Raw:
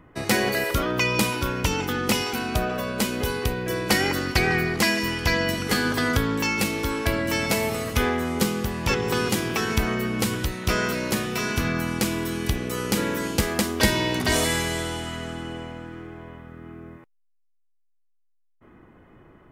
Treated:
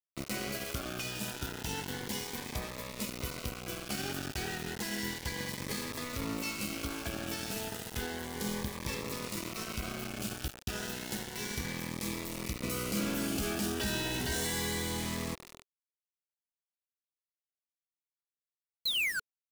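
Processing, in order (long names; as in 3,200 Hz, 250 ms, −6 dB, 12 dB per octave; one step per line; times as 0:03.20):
brickwall limiter −14.5 dBFS, peak gain reduction 10.5 dB
0:12.63–0:15.35: leveller curve on the samples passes 3
downward compressor 10 to 1, threshold −23 dBFS, peak gain reduction 6 dB
tuned comb filter 68 Hz, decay 0.36 s, harmonics all, mix 70%
0:18.85–0:19.20: sound drawn into the spectrogram fall 1,400–4,300 Hz −28 dBFS
centre clipping without the shift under −32 dBFS
phaser whose notches keep moving one way rising 0.32 Hz
level −1 dB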